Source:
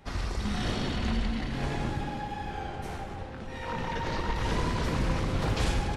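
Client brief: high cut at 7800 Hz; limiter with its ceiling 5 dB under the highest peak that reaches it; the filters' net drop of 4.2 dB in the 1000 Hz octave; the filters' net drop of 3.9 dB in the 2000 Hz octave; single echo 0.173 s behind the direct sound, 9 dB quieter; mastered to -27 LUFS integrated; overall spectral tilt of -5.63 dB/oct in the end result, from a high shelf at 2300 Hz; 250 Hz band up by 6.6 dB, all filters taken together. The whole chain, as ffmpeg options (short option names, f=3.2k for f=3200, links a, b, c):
-af "lowpass=7.8k,equalizer=f=250:t=o:g=8.5,equalizer=f=1k:t=o:g=-5.5,equalizer=f=2k:t=o:g=-7,highshelf=f=2.3k:g=7,alimiter=limit=-19.5dB:level=0:latency=1,aecho=1:1:173:0.355,volume=3.5dB"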